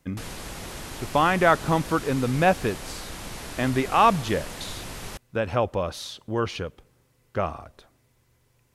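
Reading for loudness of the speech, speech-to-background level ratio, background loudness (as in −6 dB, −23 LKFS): −24.5 LKFS, 12.5 dB, −37.0 LKFS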